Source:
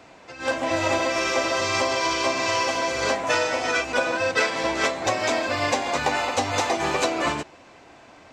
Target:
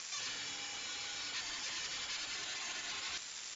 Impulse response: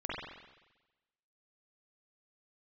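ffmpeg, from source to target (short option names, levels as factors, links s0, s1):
-filter_complex "[0:a]afftfilt=real='re*lt(hypot(re,im),0.0708)':imag='im*lt(hypot(re,im),0.0708)':win_size=1024:overlap=0.75,bandreject=f=57.04:t=h:w=4,bandreject=f=114.08:t=h:w=4,bandreject=f=171.12:t=h:w=4,bandreject=f=228.16:t=h:w=4,bandreject=f=285.2:t=h:w=4,bandreject=f=342.24:t=h:w=4,bandreject=f=399.28:t=h:w=4,bandreject=f=456.32:t=h:w=4,bandreject=f=513.36:t=h:w=4,bandreject=f=570.4:t=h:w=4,bandreject=f=627.44:t=h:w=4,bandreject=f=684.48:t=h:w=4,acrossover=split=170[s0][s1];[s0]acompressor=threshold=0.00112:ratio=4[s2];[s1]alimiter=level_in=1.41:limit=0.0631:level=0:latency=1:release=310,volume=0.708[s3];[s2][s3]amix=inputs=2:normalize=0,acompressor=mode=upward:threshold=0.00447:ratio=2.5,asoftclip=type=tanh:threshold=0.0133,aeval=exprs='0.0133*(cos(1*acos(clip(val(0)/0.0133,-1,1)))-cos(1*PI/2))+0.000944*(cos(2*acos(clip(val(0)/0.0133,-1,1)))-cos(2*PI/2))+0.000119*(cos(6*acos(clip(val(0)/0.0133,-1,1)))-cos(6*PI/2))+0.00473*(cos(7*acos(clip(val(0)/0.0133,-1,1)))-cos(7*PI/2))+0.0015*(cos(8*acos(clip(val(0)/0.0133,-1,1)))-cos(8*PI/2))':c=same,asplit=2[s4][s5];[s5]asetrate=29433,aresample=44100,atempo=1.49831,volume=0.178[s6];[s4][s6]amix=inputs=2:normalize=0,asplit=2[s7][s8];[s8]asplit=4[s9][s10][s11][s12];[s9]adelay=225,afreqshift=32,volume=0.224[s13];[s10]adelay=450,afreqshift=64,volume=0.101[s14];[s11]adelay=675,afreqshift=96,volume=0.0452[s15];[s12]adelay=900,afreqshift=128,volume=0.0204[s16];[s13][s14][s15][s16]amix=inputs=4:normalize=0[s17];[s7][s17]amix=inputs=2:normalize=0,lowpass=f=2600:t=q:w=0.5098,lowpass=f=2600:t=q:w=0.6013,lowpass=f=2600:t=q:w=0.9,lowpass=f=2600:t=q:w=2.563,afreqshift=-3100,asetrate=103194,aresample=44100,volume=1.5"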